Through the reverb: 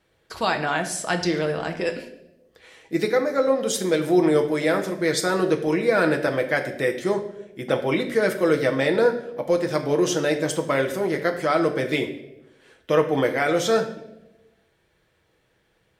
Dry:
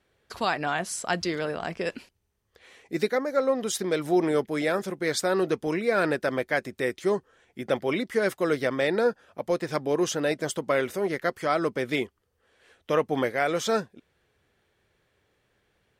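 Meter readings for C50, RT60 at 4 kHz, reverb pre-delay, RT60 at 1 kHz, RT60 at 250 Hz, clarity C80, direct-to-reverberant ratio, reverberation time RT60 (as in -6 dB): 10.5 dB, 0.70 s, 6 ms, 0.75 s, 1.2 s, 12.5 dB, 4.5 dB, 0.95 s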